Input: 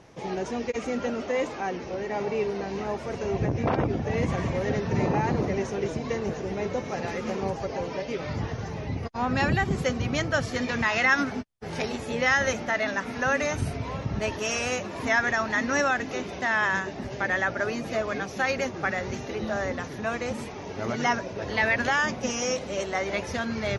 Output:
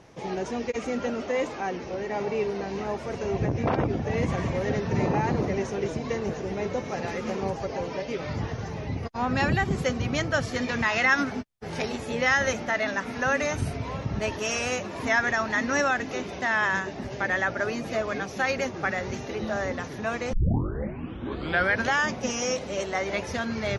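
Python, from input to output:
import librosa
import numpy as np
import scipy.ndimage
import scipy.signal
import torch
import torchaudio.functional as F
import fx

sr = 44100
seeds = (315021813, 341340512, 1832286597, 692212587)

y = fx.edit(x, sr, fx.tape_start(start_s=20.33, length_s=1.55), tone=tone)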